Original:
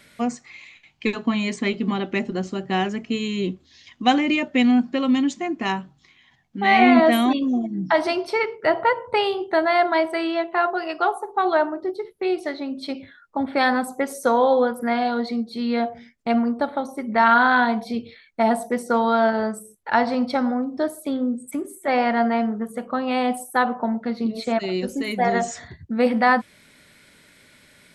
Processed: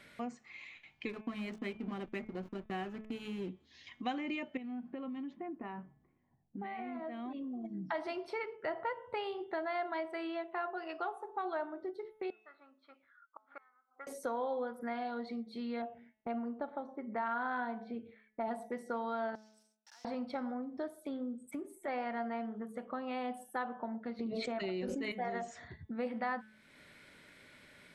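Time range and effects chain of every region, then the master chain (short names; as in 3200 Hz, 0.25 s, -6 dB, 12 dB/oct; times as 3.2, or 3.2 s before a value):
1.09–3.49 notch 890 Hz, Q 7.2 + backlash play -28 dBFS
4.57–7.65 low-pass opened by the level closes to 510 Hz, open at -13.5 dBFS + compressor 10:1, threshold -24 dBFS + tape spacing loss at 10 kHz 27 dB
12.3–14.07 band-pass 1300 Hz, Q 9.2 + flipped gate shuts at -31 dBFS, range -32 dB
15.82–18.48 HPF 540 Hz 6 dB/oct + low-pass opened by the level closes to 1400 Hz, open at -18.5 dBFS + tilt -3.5 dB/oct
19.35–20.05 block floating point 3-bit + band-pass 5500 Hz, Q 5.7 + compressor, threshold -47 dBFS
24.19–25.12 air absorption 68 m + fast leveller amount 100%
whole clip: tone controls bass -3 dB, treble -9 dB; de-hum 216.5 Hz, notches 17; compressor 2:1, threshold -42 dBFS; gain -4 dB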